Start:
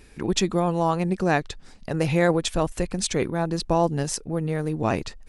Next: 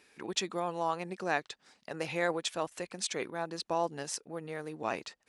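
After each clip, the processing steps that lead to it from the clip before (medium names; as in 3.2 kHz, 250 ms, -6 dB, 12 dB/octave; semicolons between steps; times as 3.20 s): frequency weighting A; trim -7.5 dB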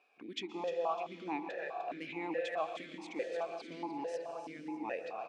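feedback delay 302 ms, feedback 46%, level -9 dB; on a send at -5 dB: reverberation RT60 4.1 s, pre-delay 116 ms; on the sum: stepped vowel filter 4.7 Hz; trim +5.5 dB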